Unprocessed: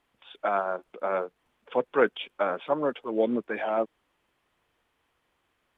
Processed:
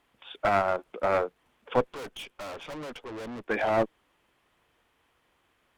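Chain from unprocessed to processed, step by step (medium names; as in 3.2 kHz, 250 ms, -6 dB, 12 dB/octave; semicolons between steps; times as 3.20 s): one-sided clip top -28 dBFS; 1.93–3.48 s: valve stage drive 41 dB, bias 0.55; trim +4 dB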